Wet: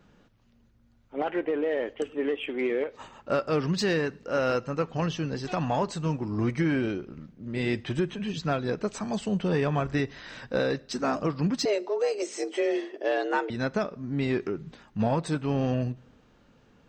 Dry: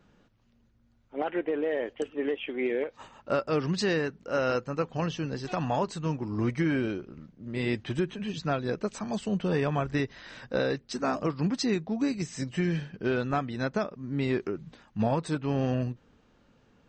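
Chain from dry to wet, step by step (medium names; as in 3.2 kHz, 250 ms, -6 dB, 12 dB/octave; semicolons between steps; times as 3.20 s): in parallel at -8 dB: saturation -32.5 dBFS, distortion -7 dB; 11.65–13.50 s: on the sum: frequency shift +200 Hz; two-slope reverb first 0.55 s, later 1.9 s, from -18 dB, DRR 19.5 dB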